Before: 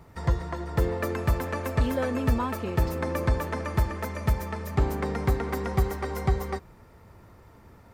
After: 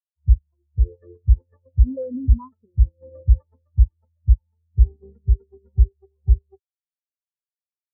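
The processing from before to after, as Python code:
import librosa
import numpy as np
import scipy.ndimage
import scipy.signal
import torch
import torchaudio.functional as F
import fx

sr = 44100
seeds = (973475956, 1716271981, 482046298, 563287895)

p1 = fx.level_steps(x, sr, step_db=15)
p2 = x + (p1 * 10.0 ** (2.0 / 20.0))
p3 = fx.spectral_expand(p2, sr, expansion=4.0)
y = p3 * 10.0 ** (5.0 / 20.0)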